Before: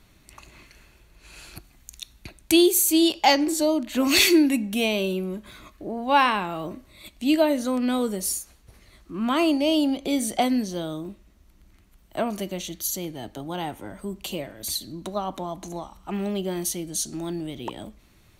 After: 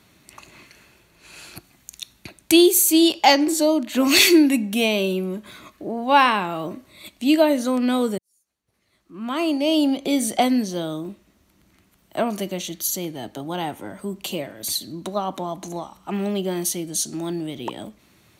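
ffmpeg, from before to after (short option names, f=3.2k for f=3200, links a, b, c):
-filter_complex "[0:a]asplit=2[a][b];[a]atrim=end=8.18,asetpts=PTS-STARTPTS,afade=t=out:st=8.176:d=0.004:c=hsin[c];[b]atrim=start=8.18,asetpts=PTS-STARTPTS,afade=t=in:d=1.67:c=qua[d];[c][d]concat=n=2:v=0:a=1,highpass=120,volume=3.5dB"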